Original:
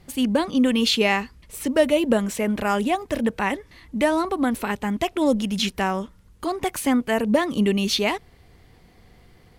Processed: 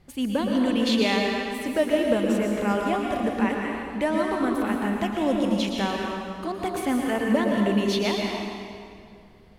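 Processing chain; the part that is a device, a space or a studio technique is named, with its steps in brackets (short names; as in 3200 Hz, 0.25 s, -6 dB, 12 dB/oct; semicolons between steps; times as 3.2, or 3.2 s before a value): swimming-pool hall (reverb RT60 2.2 s, pre-delay 0.107 s, DRR -0.5 dB; high shelf 4200 Hz -6 dB); gain -5 dB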